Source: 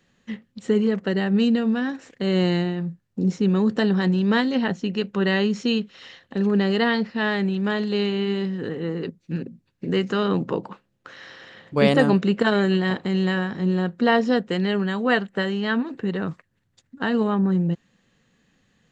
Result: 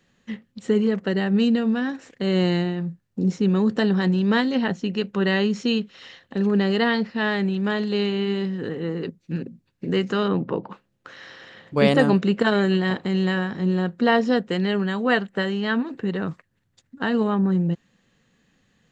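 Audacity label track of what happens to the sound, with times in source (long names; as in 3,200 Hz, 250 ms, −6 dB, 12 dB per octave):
10.280000	10.700000	high-frequency loss of the air 230 metres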